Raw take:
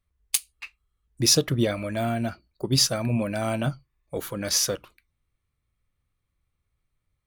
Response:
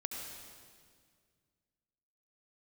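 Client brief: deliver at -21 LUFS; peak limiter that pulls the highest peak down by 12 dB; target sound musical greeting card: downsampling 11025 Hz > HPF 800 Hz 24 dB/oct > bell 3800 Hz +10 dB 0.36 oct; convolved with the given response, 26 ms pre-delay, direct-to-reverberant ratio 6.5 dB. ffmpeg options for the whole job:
-filter_complex "[0:a]alimiter=limit=-17dB:level=0:latency=1,asplit=2[a][b];[1:a]atrim=start_sample=2205,adelay=26[c];[b][c]afir=irnorm=-1:irlink=0,volume=-7dB[d];[a][d]amix=inputs=2:normalize=0,aresample=11025,aresample=44100,highpass=f=800:w=0.5412,highpass=f=800:w=1.3066,equalizer=f=3.8k:t=o:w=0.36:g=10,volume=11.5dB"

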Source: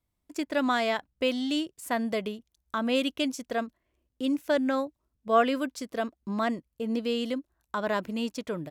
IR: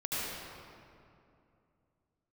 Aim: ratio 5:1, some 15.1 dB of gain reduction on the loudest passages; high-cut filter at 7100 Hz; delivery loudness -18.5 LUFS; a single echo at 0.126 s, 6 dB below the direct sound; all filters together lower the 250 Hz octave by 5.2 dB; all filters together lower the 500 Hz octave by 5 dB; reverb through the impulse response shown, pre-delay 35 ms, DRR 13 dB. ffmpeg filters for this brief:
-filter_complex "[0:a]lowpass=7.1k,equalizer=f=250:t=o:g=-4.5,equalizer=f=500:t=o:g=-5.5,acompressor=threshold=-36dB:ratio=5,aecho=1:1:126:0.501,asplit=2[a][b];[1:a]atrim=start_sample=2205,adelay=35[c];[b][c]afir=irnorm=-1:irlink=0,volume=-19.5dB[d];[a][d]amix=inputs=2:normalize=0,volume=21dB"

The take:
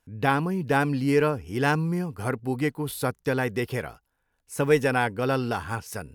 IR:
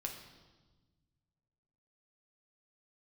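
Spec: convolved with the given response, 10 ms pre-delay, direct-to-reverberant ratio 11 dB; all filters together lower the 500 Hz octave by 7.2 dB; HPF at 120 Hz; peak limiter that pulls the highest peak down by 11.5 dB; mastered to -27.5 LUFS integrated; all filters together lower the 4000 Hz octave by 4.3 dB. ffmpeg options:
-filter_complex "[0:a]highpass=120,equalizer=f=500:t=o:g=-8.5,equalizer=f=4k:t=o:g=-6,alimiter=limit=-20dB:level=0:latency=1,asplit=2[a][b];[1:a]atrim=start_sample=2205,adelay=10[c];[b][c]afir=irnorm=-1:irlink=0,volume=-10.5dB[d];[a][d]amix=inputs=2:normalize=0,volume=4.5dB"

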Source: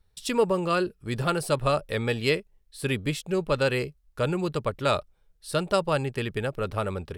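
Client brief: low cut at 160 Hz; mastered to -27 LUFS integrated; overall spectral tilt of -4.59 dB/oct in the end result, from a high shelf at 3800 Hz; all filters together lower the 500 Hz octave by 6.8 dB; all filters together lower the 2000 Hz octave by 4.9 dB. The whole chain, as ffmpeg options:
-af "highpass=160,equalizer=f=500:t=o:g=-8,equalizer=f=2k:t=o:g=-4,highshelf=f=3.8k:g=-8,volume=5.5dB"

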